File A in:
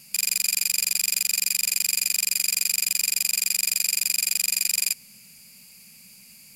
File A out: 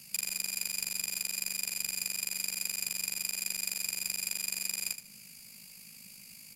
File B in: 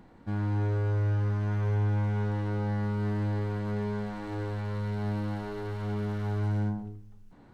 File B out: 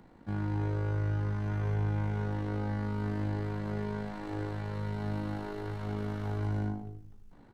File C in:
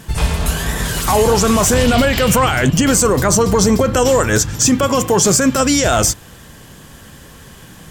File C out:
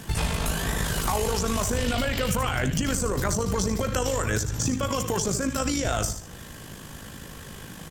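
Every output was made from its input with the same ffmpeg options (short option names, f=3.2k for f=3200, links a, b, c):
-filter_complex "[0:a]aecho=1:1:74|148|222:0.282|0.0648|0.0149,tremolo=f=52:d=0.519,acrossover=split=94|1400[a][b][c];[a]acompressor=threshold=-29dB:ratio=4[d];[b]acompressor=threshold=-28dB:ratio=4[e];[c]acompressor=threshold=-31dB:ratio=4[f];[d][e][f]amix=inputs=3:normalize=0"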